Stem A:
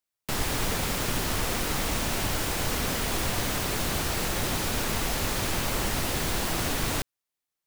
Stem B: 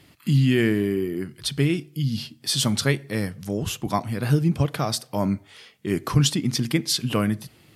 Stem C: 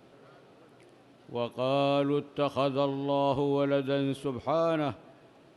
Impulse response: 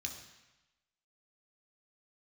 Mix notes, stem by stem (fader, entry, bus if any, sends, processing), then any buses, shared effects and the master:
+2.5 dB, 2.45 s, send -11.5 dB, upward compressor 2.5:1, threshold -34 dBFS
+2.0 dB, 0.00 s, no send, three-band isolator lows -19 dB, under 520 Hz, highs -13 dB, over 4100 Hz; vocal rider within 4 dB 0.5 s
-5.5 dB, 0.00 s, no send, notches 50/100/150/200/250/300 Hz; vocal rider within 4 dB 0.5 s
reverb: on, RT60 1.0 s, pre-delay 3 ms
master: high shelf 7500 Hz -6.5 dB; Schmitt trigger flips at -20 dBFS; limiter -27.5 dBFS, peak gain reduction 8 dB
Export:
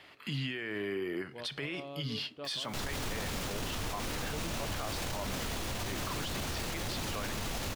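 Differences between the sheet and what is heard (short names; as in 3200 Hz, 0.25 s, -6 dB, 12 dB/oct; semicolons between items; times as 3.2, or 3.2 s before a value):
stem C -5.5 dB -> -16.0 dB; master: missing Schmitt trigger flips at -20 dBFS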